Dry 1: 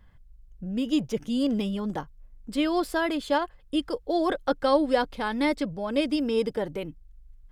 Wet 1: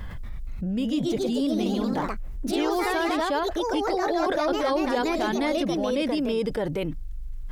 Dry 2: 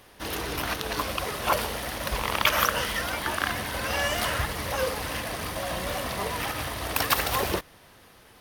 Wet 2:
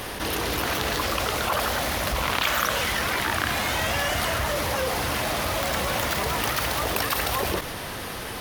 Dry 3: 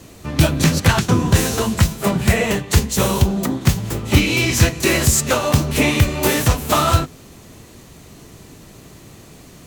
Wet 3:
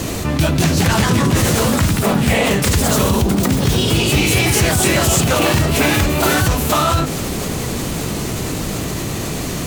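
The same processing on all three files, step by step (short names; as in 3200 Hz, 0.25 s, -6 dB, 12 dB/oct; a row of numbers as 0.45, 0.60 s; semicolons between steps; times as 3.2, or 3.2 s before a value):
echoes that change speed 0.235 s, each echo +2 st, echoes 3; fast leveller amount 70%; gain -5.5 dB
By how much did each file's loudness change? +1.5, +3.0, +1.0 LU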